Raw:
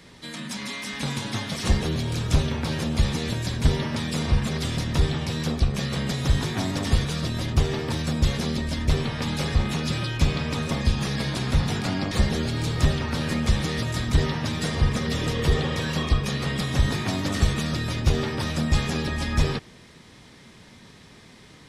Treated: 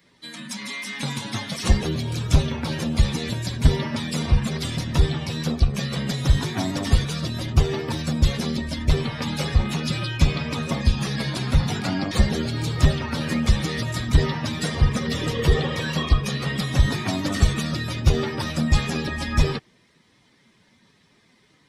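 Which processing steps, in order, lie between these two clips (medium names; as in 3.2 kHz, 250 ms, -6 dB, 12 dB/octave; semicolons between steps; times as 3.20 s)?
expander on every frequency bin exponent 1.5; trim +5 dB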